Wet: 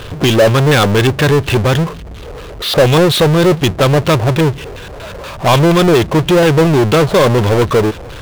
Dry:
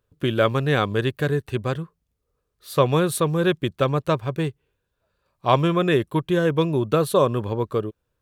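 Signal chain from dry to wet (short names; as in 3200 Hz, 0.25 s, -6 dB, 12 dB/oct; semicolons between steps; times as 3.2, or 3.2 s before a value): LFO low-pass square 4.2 Hz 690–3300 Hz; power-law curve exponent 0.35; gain -1 dB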